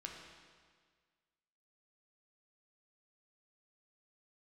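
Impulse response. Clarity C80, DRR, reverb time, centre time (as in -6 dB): 4.0 dB, 0.0 dB, 1.7 s, 66 ms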